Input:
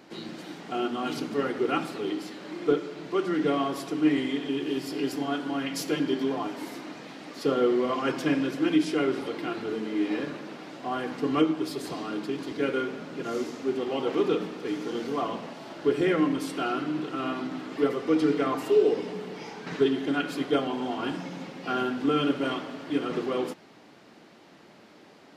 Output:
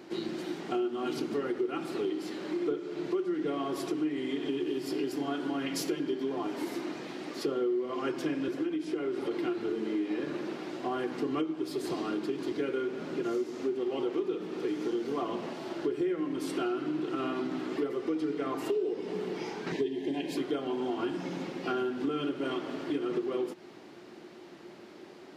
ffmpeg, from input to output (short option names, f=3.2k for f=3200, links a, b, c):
-filter_complex "[0:a]asettb=1/sr,asplit=3[a][b][c];[a]atrim=end=8.484[d];[b]atrim=start=8.48:end=9.31,asetpts=PTS-STARTPTS,afade=t=in:d=0.004:c=qsin,afade=t=out:st=0.826:d=0.004:c=qsin,acrossover=split=230|2000[e][f][g];[e]acompressor=threshold=-44dB:ratio=4[h];[f]acompressor=threshold=-30dB:ratio=4[i];[g]acompressor=threshold=-49dB:ratio=4[j];[h][i][j]amix=inputs=3:normalize=0[k];[c]atrim=start=9.306[l];[d][k]acrossfade=d=0.004:c1=hsin:c2=qsin[m];[m][l]acrossfade=d=0.004:c1=qsin:c2=hsin,asettb=1/sr,asplit=3[n][o][p];[n]atrim=end=19.724[q];[o]atrim=start=19.72:end=20.37,asetpts=PTS-STARTPTS,afade=t=in:d=0.004:c=qsin,afade=t=out:st=0.646:d=0.004:c=qsin,asuperstop=centerf=1300:order=8:qfactor=2.1[r];[p]atrim=start=20.366[s];[q][r]acrossfade=d=0.004:c1=hsin:c2=qsin[t];[t][s]acrossfade=d=0.004:c1=qsin:c2=hsin,equalizer=f=360:w=5.8:g=12.5,acompressor=threshold=-29dB:ratio=6"